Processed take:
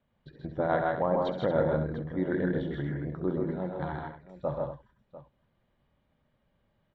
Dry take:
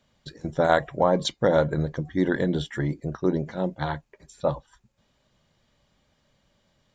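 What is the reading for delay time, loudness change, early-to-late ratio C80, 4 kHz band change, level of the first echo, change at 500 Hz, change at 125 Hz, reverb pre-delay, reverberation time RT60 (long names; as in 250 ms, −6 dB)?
67 ms, −5.0 dB, no reverb audible, −15.5 dB, −11.0 dB, −5.0 dB, −5.0 dB, no reverb audible, no reverb audible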